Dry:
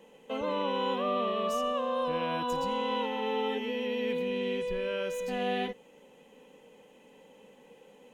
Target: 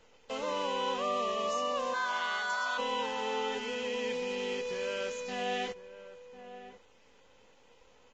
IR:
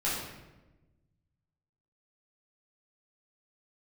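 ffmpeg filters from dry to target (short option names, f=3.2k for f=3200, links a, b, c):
-filter_complex "[0:a]highpass=f=510:p=1,acrusher=bits=8:dc=4:mix=0:aa=0.000001,asplit=3[a][b][c];[a]afade=t=out:st=1.93:d=0.02[d];[b]afreqshift=490,afade=t=in:st=1.93:d=0.02,afade=t=out:st=2.77:d=0.02[e];[c]afade=t=in:st=2.77:d=0.02[f];[d][e][f]amix=inputs=3:normalize=0,asplit=2[g][h];[h]adelay=1050,volume=-13dB,highshelf=f=4k:g=-23.6[i];[g][i]amix=inputs=2:normalize=0" -ar 16000 -c:a libvorbis -b:a 32k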